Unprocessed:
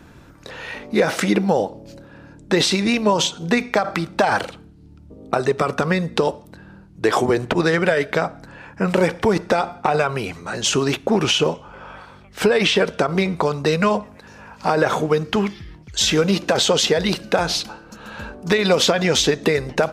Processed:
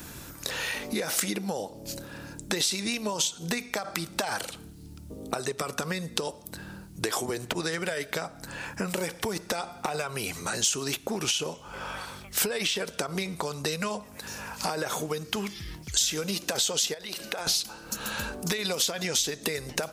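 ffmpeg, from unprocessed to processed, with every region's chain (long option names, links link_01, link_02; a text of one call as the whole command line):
ffmpeg -i in.wav -filter_complex "[0:a]asettb=1/sr,asplit=3[link_01][link_02][link_03];[link_01]atrim=end=16.944[link_04];[link_02]atrim=start=16.94:end=17.47,asetpts=PTS-STARTPTS,afade=type=in:duration=0.004:curve=qsin,afade=type=out:start_time=0.526:duration=0.004:curve=qsin,acompressor=threshold=-26dB:ratio=5:attack=3.2:release=140:knee=1:detection=peak,bass=frequency=250:gain=-12,treble=frequency=4000:gain=-6[link_05];[link_03]atrim=start=17.466[link_06];[link_04][link_05]acrossfade=duration=0.004:curve1=hsin:curve2=qsin[link_07];[link_07][link_06]acrossfade=duration=0.004:curve1=qsin:curve2=hsin,aemphasis=mode=production:type=75kf,acompressor=threshold=-30dB:ratio=5,highshelf=frequency=4800:gain=7.5" out.wav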